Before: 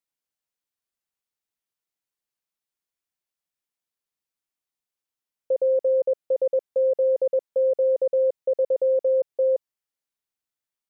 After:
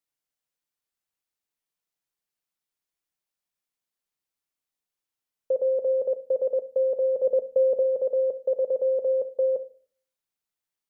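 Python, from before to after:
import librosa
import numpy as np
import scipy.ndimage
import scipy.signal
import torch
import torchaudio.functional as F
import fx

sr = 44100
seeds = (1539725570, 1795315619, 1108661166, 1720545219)

y = fx.low_shelf(x, sr, hz=370.0, db=8.0, at=(7.23, 7.82), fade=0.02)
y = fx.room_shoebox(y, sr, seeds[0], volume_m3=350.0, walls='furnished', distance_m=0.44)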